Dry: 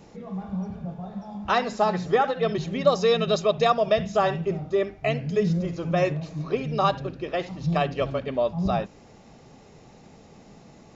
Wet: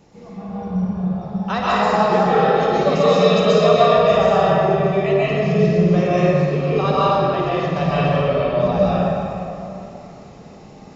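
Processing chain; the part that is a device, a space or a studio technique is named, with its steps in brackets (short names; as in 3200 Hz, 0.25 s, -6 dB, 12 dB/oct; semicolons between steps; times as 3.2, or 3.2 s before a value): tunnel (flutter echo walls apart 9.3 m, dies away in 0.39 s; reverb RT60 3.0 s, pre-delay 0.119 s, DRR -9 dB); gain -2.5 dB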